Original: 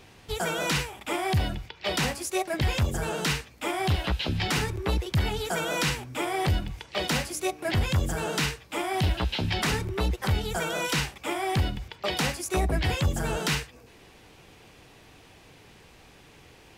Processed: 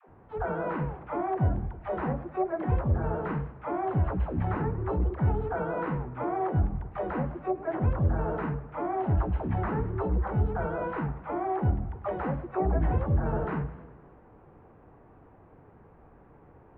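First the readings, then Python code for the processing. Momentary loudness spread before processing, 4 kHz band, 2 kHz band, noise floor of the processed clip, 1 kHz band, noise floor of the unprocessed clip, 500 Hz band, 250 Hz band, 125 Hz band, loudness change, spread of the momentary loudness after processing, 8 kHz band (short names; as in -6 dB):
5 LU, under -30 dB, -11.0 dB, -55 dBFS, -0.5 dB, -53 dBFS, 0.0 dB, 0.0 dB, 0.0 dB, -2.0 dB, 6 LU, under -40 dB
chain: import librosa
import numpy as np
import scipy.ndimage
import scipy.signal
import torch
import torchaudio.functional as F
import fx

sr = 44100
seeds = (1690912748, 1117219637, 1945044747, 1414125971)

y = fx.dead_time(x, sr, dead_ms=0.065)
y = scipy.signal.sosfilt(scipy.signal.butter(4, 1300.0, 'lowpass', fs=sr, output='sos'), y)
y = fx.dispersion(y, sr, late='lows', ms=89.0, hz=370.0)
y = fx.echo_warbled(y, sr, ms=102, feedback_pct=63, rate_hz=2.8, cents=154, wet_db=-16.5)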